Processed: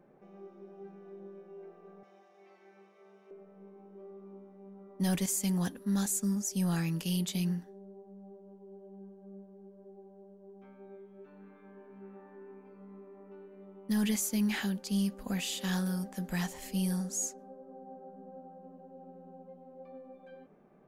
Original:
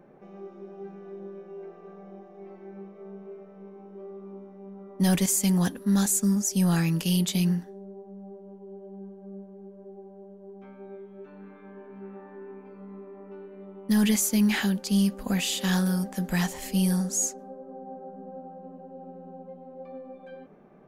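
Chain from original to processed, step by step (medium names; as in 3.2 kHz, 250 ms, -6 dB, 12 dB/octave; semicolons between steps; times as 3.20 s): 2.03–3.31 s: frequency weighting ITU-R 468; trim -7.5 dB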